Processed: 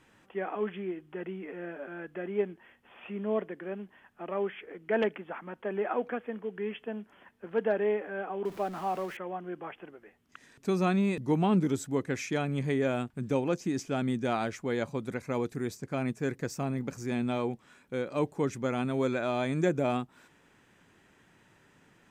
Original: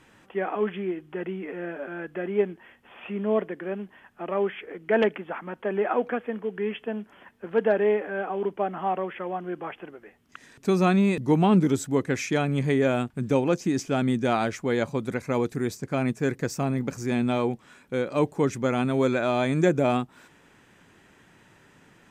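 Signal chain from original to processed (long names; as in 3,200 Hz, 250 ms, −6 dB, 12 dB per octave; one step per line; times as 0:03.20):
0:08.45–0:09.17: converter with a step at zero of −37.5 dBFS
level −6 dB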